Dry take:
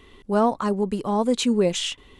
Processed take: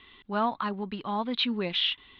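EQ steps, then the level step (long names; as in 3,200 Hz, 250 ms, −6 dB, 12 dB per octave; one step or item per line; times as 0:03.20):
elliptic low-pass filter 3,800 Hz, stop band 50 dB
spectral tilt +2.5 dB per octave
parametric band 490 Hz −10 dB 0.86 octaves
−1.5 dB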